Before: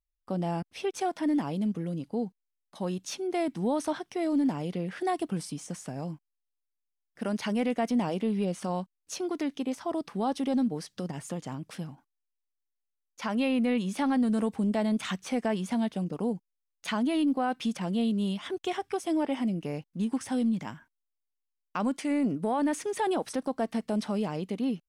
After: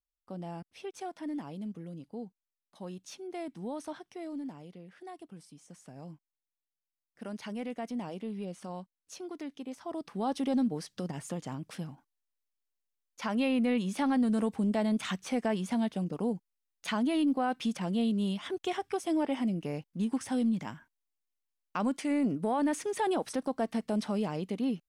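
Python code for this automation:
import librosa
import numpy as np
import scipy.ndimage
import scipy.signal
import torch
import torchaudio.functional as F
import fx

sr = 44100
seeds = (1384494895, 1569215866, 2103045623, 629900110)

y = fx.gain(x, sr, db=fx.line((4.08, -10.0), (4.83, -17.0), (5.5, -17.0), (6.1, -9.5), (9.67, -9.5), (10.37, -1.5)))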